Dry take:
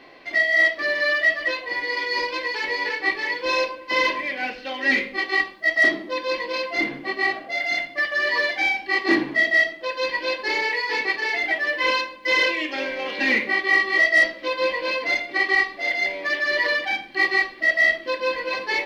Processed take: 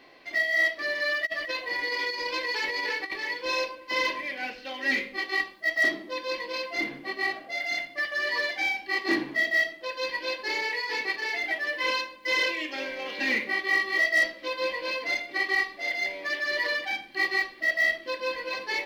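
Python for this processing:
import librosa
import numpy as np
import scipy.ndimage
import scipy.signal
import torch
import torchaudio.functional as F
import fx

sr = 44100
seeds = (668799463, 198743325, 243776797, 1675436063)

y = fx.high_shelf(x, sr, hz=6100.0, db=10.0)
y = fx.over_compress(y, sr, threshold_db=-25.0, ratio=-0.5, at=(1.25, 3.16), fade=0.02)
y = y * 10.0 ** (-7.0 / 20.0)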